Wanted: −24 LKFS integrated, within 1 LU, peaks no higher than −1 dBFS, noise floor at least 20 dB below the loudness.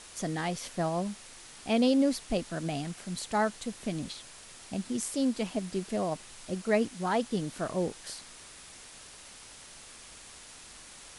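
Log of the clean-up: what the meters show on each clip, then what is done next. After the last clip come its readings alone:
background noise floor −50 dBFS; target noise floor −52 dBFS; integrated loudness −32.0 LKFS; sample peak −14.5 dBFS; target loudness −24.0 LKFS
→ broadband denoise 6 dB, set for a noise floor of −50 dBFS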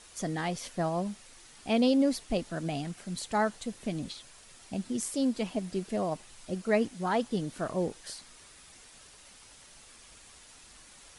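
background noise floor −54 dBFS; integrated loudness −32.0 LKFS; sample peak −14.5 dBFS; target loudness −24.0 LKFS
→ level +8 dB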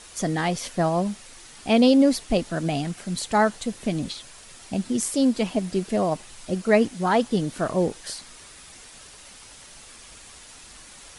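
integrated loudness −24.0 LKFS; sample peak −6.5 dBFS; background noise floor −46 dBFS

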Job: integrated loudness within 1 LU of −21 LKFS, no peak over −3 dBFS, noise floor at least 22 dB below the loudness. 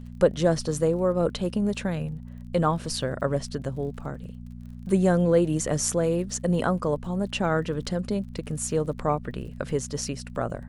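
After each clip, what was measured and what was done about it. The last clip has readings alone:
crackle rate 39 per second; mains hum 60 Hz; hum harmonics up to 240 Hz; level of the hum −38 dBFS; integrated loudness −26.5 LKFS; sample peak −7.0 dBFS; target loudness −21.0 LKFS
→ click removal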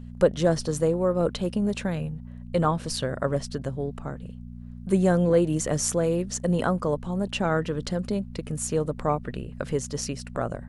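crackle rate 0.094 per second; mains hum 60 Hz; hum harmonics up to 240 Hz; level of the hum −39 dBFS
→ hum removal 60 Hz, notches 4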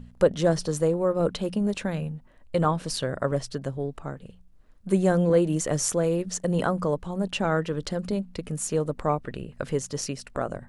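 mains hum none found; integrated loudness −26.5 LKFS; sample peak −7.0 dBFS; target loudness −21.0 LKFS
→ level +5.5 dB
brickwall limiter −3 dBFS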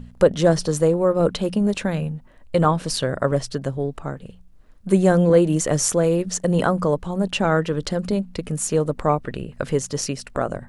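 integrated loudness −21.0 LKFS; sample peak −3.0 dBFS; background noise floor −47 dBFS

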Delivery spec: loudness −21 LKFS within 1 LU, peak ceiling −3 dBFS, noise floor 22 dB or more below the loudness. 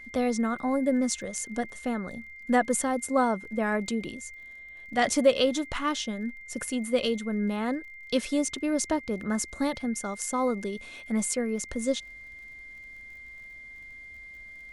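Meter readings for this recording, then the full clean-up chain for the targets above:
crackle rate 38 per second; interfering tone 2,100 Hz; level of the tone −43 dBFS; integrated loudness −28.5 LKFS; sample peak −9.0 dBFS; target loudness −21.0 LKFS
→ click removal
notch filter 2,100 Hz, Q 30
level +7.5 dB
brickwall limiter −3 dBFS

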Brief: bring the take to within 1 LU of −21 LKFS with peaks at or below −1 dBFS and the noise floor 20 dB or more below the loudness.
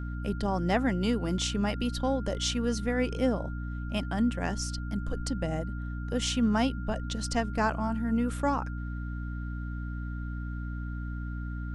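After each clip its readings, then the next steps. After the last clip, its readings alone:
mains hum 60 Hz; hum harmonics up to 300 Hz; level of the hum −32 dBFS; interfering tone 1,400 Hz; level of the tone −46 dBFS; integrated loudness −31.0 LKFS; sample peak −13.0 dBFS; target loudness −21.0 LKFS
→ hum removal 60 Hz, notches 5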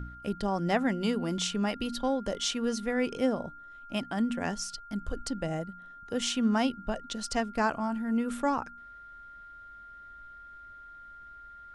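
mains hum none found; interfering tone 1,400 Hz; level of the tone −46 dBFS
→ notch filter 1,400 Hz, Q 30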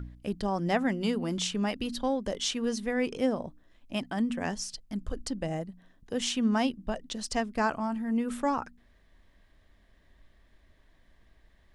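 interfering tone none found; integrated loudness −31.0 LKFS; sample peak −13.5 dBFS; target loudness −21.0 LKFS
→ level +10 dB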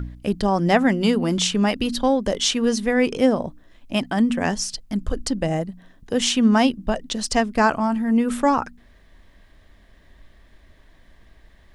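integrated loudness −21.0 LKFS; sample peak −3.5 dBFS; background noise floor −53 dBFS

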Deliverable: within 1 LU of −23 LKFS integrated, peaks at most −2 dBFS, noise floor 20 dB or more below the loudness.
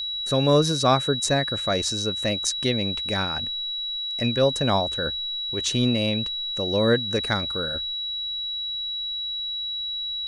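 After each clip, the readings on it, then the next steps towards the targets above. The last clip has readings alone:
interfering tone 3,900 Hz; level of the tone −27 dBFS; integrated loudness −23.5 LKFS; sample peak −6.0 dBFS; target loudness −23.0 LKFS
→ notch filter 3,900 Hz, Q 30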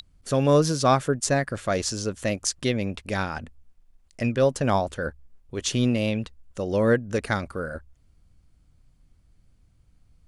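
interfering tone none found; integrated loudness −25.0 LKFS; sample peak −6.0 dBFS; target loudness −23.0 LKFS
→ level +2 dB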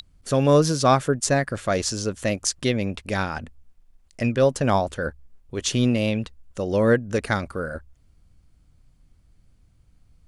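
integrated loudness −23.0 LKFS; sample peak −4.0 dBFS; background noise floor −59 dBFS

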